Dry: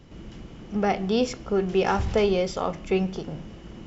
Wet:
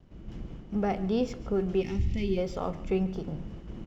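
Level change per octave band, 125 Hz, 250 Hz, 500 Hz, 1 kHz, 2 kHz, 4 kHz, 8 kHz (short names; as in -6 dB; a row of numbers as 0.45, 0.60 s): -1.5 dB, -3.0 dB, -6.5 dB, -9.5 dB, -11.0 dB, -11.0 dB, n/a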